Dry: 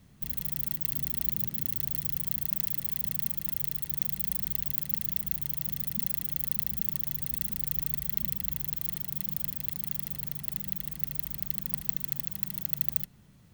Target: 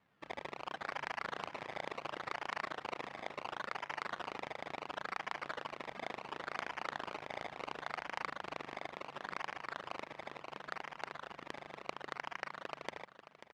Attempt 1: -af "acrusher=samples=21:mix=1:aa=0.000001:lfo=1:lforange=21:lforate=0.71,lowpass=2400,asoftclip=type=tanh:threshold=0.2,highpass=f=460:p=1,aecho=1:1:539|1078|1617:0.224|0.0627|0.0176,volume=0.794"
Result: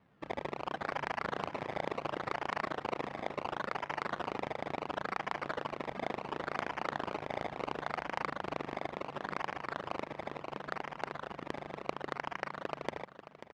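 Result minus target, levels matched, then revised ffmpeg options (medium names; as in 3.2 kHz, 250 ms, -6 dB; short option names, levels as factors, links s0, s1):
500 Hz band +3.0 dB
-af "acrusher=samples=21:mix=1:aa=0.000001:lfo=1:lforange=21:lforate=0.71,lowpass=2400,asoftclip=type=tanh:threshold=0.2,highpass=f=1600:p=1,aecho=1:1:539|1078|1617:0.224|0.0627|0.0176,volume=0.794"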